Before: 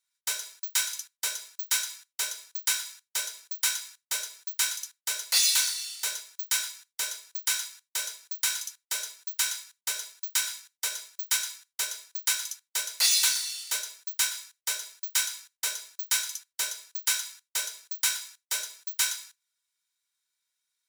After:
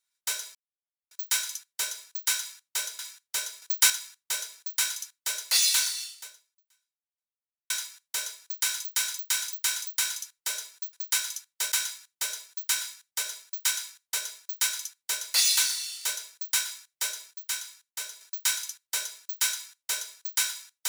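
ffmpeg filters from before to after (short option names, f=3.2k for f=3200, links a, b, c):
-filter_complex "[0:a]asplit=14[a][b][c][d][e][f][g][h][i][j][k][l][m][n];[a]atrim=end=0.55,asetpts=PTS-STARTPTS,afade=t=out:st=0.546:d=0.004:c=hsin,apad=pad_dur=0.56[o];[b]atrim=start=0.55:end=2.432,asetpts=PTS-STARTPTS,afade=t=in:d=0.004:c=hsin[p];[c]atrim=start=2.798:end=3.432[q];[d]atrim=start=3.428:end=3.712,asetpts=PTS-STARTPTS,volume=6.5dB[r];[e]atrim=start=3.708:end=7.51,asetpts=PTS-STARTPTS,afade=t=out:st=2.132:d=1.67:c=exp[s];[f]atrim=start=7.51:end=8.662,asetpts=PTS-STARTPTS,afade=t=in:d=0.004:c=hsin[t];[g]atrim=start=8.318:end=8.662[u];[h]atrim=start=8.318:end=8.662[v];[i]atrim=start=8.318:end=8.662[w];[j]atrim=start=8.318:end=9.382[x];[k]atrim=start=12.078:end=12.872[y];[l]atrim=start=9.378:end=14.972[z];[m]atrim=start=14.968:end=15.872,asetpts=PTS-STARTPTS,volume=-5.5dB[aa];[n]atrim=start=15.868[ab];[o][p]concat=n=2:v=0:a=1[ac];[ac][q]acrossfade=d=0.004:c1=hsin:c2=hsin[ad];[ad][r]acrossfade=d=0.004:c1=hsin:c2=hsin[ae];[s][t]concat=n=2:v=0:a=1[af];[ae][af]acrossfade=d=0.004:c1=hsin:c2=hsin[ag];[ag][u]acrossfade=d=0.004:c1=hsin:c2=hsin[ah];[ah][v]acrossfade=d=0.004:c1=hsin:c2=hsin[ai];[ai][w]acrossfade=d=0.004:c1=hsin:c2=hsin[aj];[aj][x]acrossfade=d=0.004:c1=hsin:c2=hsin[ak];[ak][y]acrossfade=d=0.004:c1=hsin:c2=hsin[al];[al][z]acrossfade=d=0.004:c1=hsin:c2=hsin[am];[am][aa]acrossfade=d=0.004:c1=hsin:c2=hsin[an];[an][ab]acrossfade=d=0.004:c1=hsin:c2=hsin"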